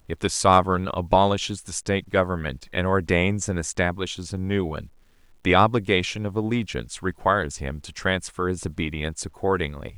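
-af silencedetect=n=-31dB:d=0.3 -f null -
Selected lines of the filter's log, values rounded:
silence_start: 4.84
silence_end: 5.45 | silence_duration: 0.61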